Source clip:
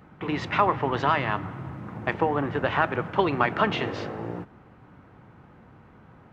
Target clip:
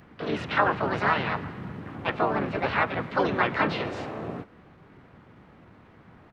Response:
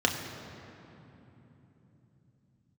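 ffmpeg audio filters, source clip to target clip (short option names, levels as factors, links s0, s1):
-filter_complex "[0:a]asplit=4[s0][s1][s2][s3];[s1]asetrate=33038,aresample=44100,atempo=1.33484,volume=0.562[s4];[s2]asetrate=58866,aresample=44100,atempo=0.749154,volume=0.794[s5];[s3]asetrate=66075,aresample=44100,atempo=0.66742,volume=0.794[s6];[s0][s4][s5][s6]amix=inputs=4:normalize=0,acrossover=split=3800[s7][s8];[s8]acompressor=threshold=0.00398:ratio=4:attack=1:release=60[s9];[s7][s9]amix=inputs=2:normalize=0,volume=0.562"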